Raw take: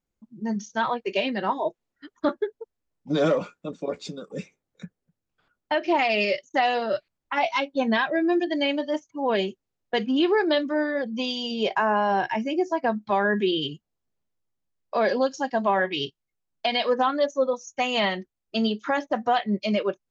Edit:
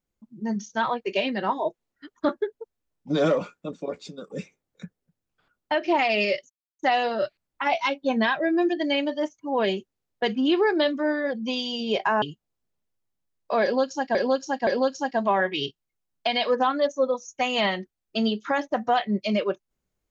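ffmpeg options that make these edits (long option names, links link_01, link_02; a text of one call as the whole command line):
ffmpeg -i in.wav -filter_complex "[0:a]asplit=6[link_01][link_02][link_03][link_04][link_05][link_06];[link_01]atrim=end=4.18,asetpts=PTS-STARTPTS,afade=type=out:start_time=3.7:duration=0.48:silence=0.473151[link_07];[link_02]atrim=start=4.18:end=6.5,asetpts=PTS-STARTPTS,afade=type=in:duration=0.004:curve=hsin:silence=0.473151,afade=type=out:start_time=2.316:duration=0.004:curve=hsin,apad=pad_dur=0.29[link_08];[link_03]atrim=start=6.5:end=11.932,asetpts=PTS-STARTPTS,afade=type=in:duration=0.004:curve=hsin[link_09];[link_04]atrim=start=13.648:end=15.582[link_10];[link_05]atrim=start=15.058:end=15.582[link_11];[link_06]atrim=start=15.058[link_12];[link_07][link_08][link_09]concat=n=3:v=0:a=1[link_13];[link_13][link_10]acrossfade=duration=0.004:curve1=hsin:curve2=hsin[link_14];[link_14][link_11]acrossfade=duration=0.004:curve1=hsin:curve2=hsin[link_15];[link_15][link_12]acrossfade=duration=0.004:curve1=hsin:curve2=hsin" out.wav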